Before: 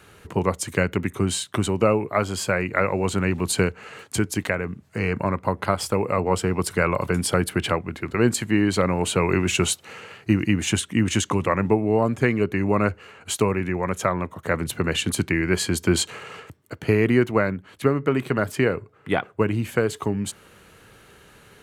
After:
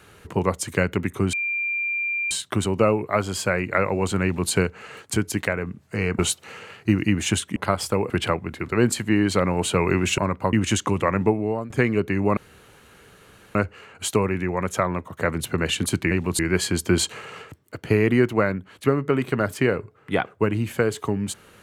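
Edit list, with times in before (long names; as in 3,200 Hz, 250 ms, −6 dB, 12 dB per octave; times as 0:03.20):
0:01.33: insert tone 2,380 Hz −22.5 dBFS 0.98 s
0:03.25–0:03.53: duplicate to 0:15.37
0:05.21–0:05.56: swap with 0:09.60–0:10.97
0:06.10–0:07.52: remove
0:11.72–0:12.14: fade out, to −14.5 dB
0:12.81: splice in room tone 1.18 s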